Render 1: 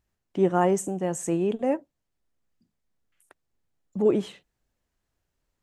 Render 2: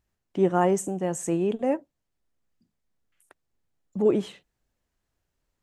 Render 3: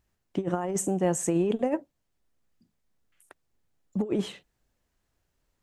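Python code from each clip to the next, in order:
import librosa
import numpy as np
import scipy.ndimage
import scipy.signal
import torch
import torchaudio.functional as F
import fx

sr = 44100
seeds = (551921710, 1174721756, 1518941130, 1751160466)

y1 = x
y2 = fx.over_compress(y1, sr, threshold_db=-25.0, ratio=-0.5)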